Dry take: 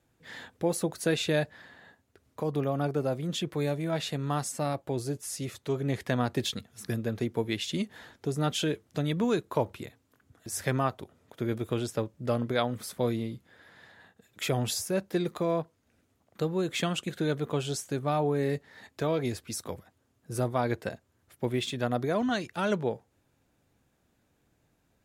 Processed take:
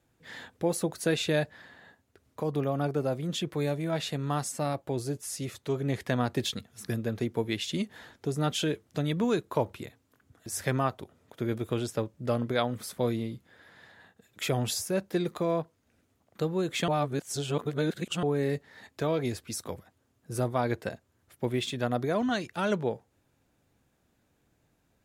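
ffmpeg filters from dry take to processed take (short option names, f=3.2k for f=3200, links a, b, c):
-filter_complex "[0:a]asplit=3[a][b][c];[a]atrim=end=16.882[d];[b]atrim=start=16.878:end=18.232,asetpts=PTS-STARTPTS,areverse[e];[c]atrim=start=18.228[f];[d][e]acrossfade=d=0.004:c1=hsin:c2=hsin[g];[g][f]acrossfade=d=0.004:c1=hsin:c2=hsin"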